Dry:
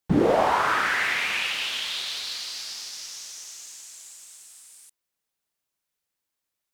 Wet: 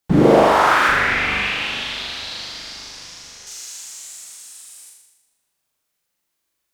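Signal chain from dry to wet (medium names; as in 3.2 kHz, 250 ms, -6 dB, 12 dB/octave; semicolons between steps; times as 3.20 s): 0.88–3.47 s: RIAA curve playback; flutter echo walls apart 6.9 m, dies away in 0.99 s; trim +4.5 dB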